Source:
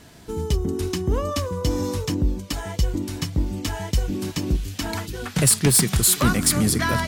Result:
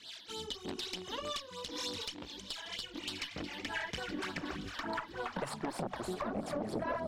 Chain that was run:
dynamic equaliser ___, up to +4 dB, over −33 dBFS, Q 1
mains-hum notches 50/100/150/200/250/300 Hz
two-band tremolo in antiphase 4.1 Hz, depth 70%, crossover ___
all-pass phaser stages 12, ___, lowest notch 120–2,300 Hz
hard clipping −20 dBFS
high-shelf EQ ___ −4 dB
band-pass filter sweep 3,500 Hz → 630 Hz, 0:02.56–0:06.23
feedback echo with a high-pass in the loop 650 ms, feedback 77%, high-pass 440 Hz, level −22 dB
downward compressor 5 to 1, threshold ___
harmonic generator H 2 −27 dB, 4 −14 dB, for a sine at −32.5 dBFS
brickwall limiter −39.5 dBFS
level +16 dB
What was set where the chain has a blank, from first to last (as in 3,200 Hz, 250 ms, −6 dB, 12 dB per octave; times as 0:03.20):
210 Hz, 550 Hz, 3.3 Hz, 7,000 Hz, −51 dBFS